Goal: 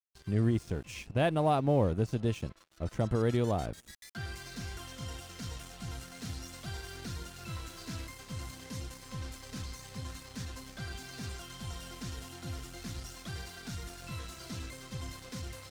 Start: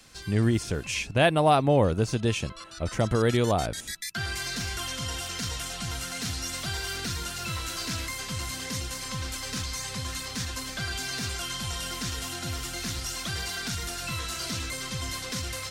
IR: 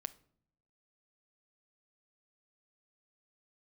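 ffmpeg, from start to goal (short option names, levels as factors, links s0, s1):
-af "tiltshelf=f=900:g=4.5,aeval=exprs='sgn(val(0))*max(abs(val(0))-0.0075,0)':c=same,volume=0.398"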